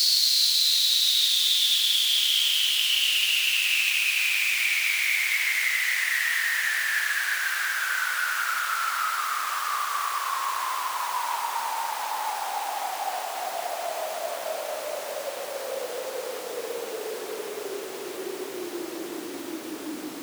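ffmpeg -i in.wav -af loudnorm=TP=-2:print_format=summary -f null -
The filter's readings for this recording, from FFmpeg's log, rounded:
Input Integrated:    -24.2 LUFS
Input True Peak:      -8.9 dBTP
Input LRA:            14.5 LU
Input Threshold:     -34.6 LUFS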